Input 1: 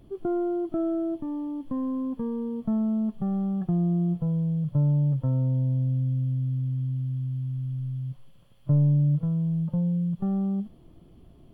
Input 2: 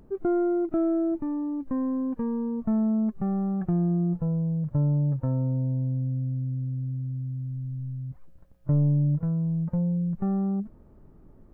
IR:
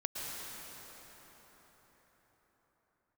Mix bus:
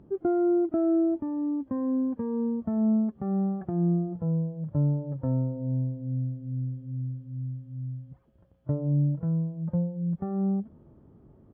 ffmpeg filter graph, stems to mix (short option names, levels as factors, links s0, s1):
-filter_complex "[0:a]lowpass=f=1000:p=1,lowshelf=f=420:g=9,asplit=2[s0][s1];[s1]adelay=2.7,afreqshift=-2.4[s2];[s0][s2]amix=inputs=2:normalize=1,volume=0.355[s3];[1:a]lowpass=f=1200:p=1,volume=-1,volume=1[s4];[s3][s4]amix=inputs=2:normalize=0,highpass=78"